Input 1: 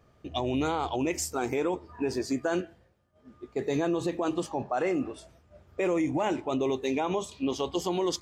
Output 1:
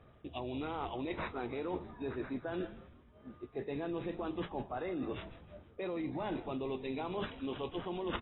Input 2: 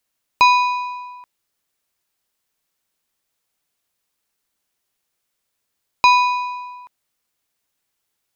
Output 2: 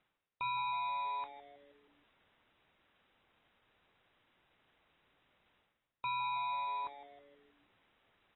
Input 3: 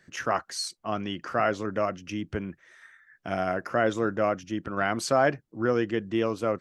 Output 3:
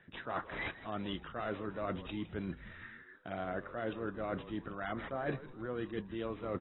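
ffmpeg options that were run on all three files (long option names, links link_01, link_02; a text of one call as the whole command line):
ffmpeg -i in.wav -filter_complex "[0:a]areverse,acompressor=threshold=-38dB:ratio=8,areverse,acrusher=samples=7:mix=1:aa=0.000001,asplit=6[link_01][link_02][link_03][link_04][link_05][link_06];[link_02]adelay=159,afreqshift=-140,volume=-15dB[link_07];[link_03]adelay=318,afreqshift=-280,volume=-20.5dB[link_08];[link_04]adelay=477,afreqshift=-420,volume=-26dB[link_09];[link_05]adelay=636,afreqshift=-560,volume=-31.5dB[link_10];[link_06]adelay=795,afreqshift=-700,volume=-37.1dB[link_11];[link_01][link_07][link_08][link_09][link_10][link_11]amix=inputs=6:normalize=0,volume=2dB" -ar 22050 -c:a aac -b:a 16k out.aac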